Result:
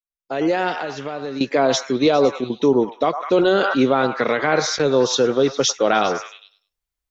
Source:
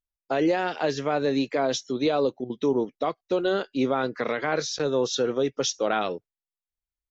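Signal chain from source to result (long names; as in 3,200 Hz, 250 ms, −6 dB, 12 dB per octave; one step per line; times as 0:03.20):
fade in at the beginning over 0.80 s
0:00.72–0:01.41: downward compressor 5 to 1, threshold −34 dBFS, peak gain reduction 12.5 dB
on a send: echo through a band-pass that steps 101 ms, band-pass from 990 Hz, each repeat 0.7 octaves, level −6 dB
0:03.17–0:03.77: on the sum: level that may fall only so fast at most 30 dB per second
level +7.5 dB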